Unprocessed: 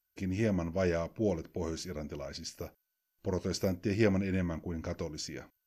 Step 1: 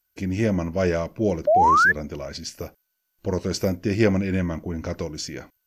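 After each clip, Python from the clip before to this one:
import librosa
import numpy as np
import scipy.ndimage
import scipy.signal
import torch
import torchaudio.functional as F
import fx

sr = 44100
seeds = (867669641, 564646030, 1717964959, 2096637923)

y = fx.spec_paint(x, sr, seeds[0], shape='rise', start_s=1.47, length_s=0.45, low_hz=570.0, high_hz=1800.0, level_db=-24.0)
y = y * 10.0 ** (8.0 / 20.0)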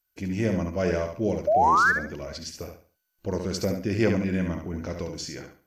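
y = fx.echo_feedback(x, sr, ms=70, feedback_pct=29, wet_db=-6.0)
y = y * 10.0 ** (-4.0 / 20.0)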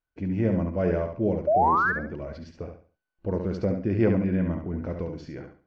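y = fx.spacing_loss(x, sr, db_at_10k=43)
y = y * 10.0 ** (2.5 / 20.0)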